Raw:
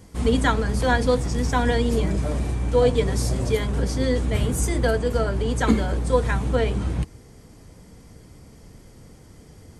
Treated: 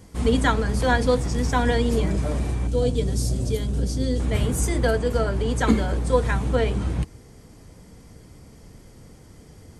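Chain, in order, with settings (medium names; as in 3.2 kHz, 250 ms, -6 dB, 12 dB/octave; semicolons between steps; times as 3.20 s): 2.67–4.20 s: graphic EQ 500/1000/2000 Hz -3/-11/-10 dB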